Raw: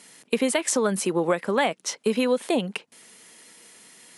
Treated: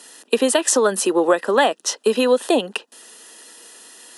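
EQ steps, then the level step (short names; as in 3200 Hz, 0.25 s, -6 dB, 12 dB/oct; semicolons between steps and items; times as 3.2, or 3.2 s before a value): HPF 270 Hz 24 dB/oct; Butterworth band-stop 2200 Hz, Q 4.6; +7.0 dB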